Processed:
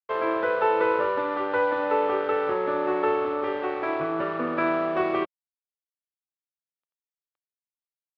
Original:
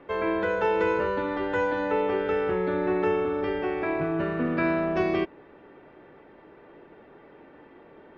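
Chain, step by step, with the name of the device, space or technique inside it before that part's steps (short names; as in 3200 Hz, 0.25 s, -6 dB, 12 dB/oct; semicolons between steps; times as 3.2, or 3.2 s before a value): blown loudspeaker (crossover distortion -39.5 dBFS; speaker cabinet 150–3800 Hz, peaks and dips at 190 Hz -10 dB, 550 Hz +6 dB, 850 Hz +4 dB, 1200 Hz +10 dB)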